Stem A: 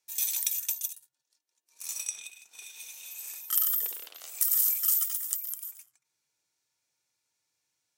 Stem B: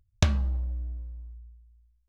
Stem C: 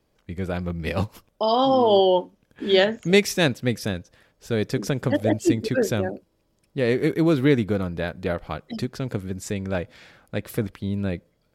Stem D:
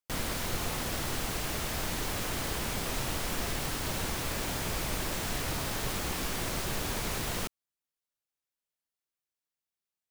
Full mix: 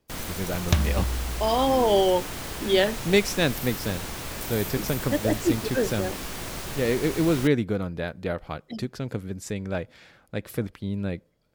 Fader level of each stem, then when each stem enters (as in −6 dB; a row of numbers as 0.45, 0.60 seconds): −14.0, +1.0, −3.0, −1.0 decibels; 0.00, 0.50, 0.00, 0.00 seconds